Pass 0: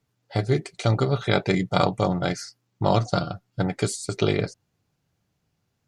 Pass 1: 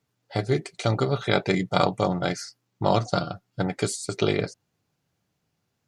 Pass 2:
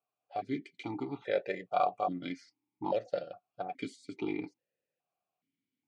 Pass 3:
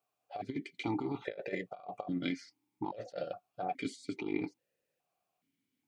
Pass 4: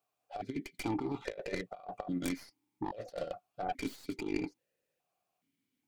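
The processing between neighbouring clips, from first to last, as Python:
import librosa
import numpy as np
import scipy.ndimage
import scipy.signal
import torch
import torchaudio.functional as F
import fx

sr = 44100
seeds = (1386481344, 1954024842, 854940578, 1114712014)

y1 = fx.low_shelf(x, sr, hz=82.0, db=-11.0)
y2 = fx.vowel_held(y1, sr, hz=2.4)
y3 = fx.over_compress(y2, sr, threshold_db=-37.0, ratio=-0.5)
y3 = y3 * librosa.db_to_amplitude(1.0)
y4 = fx.tracing_dist(y3, sr, depth_ms=0.26)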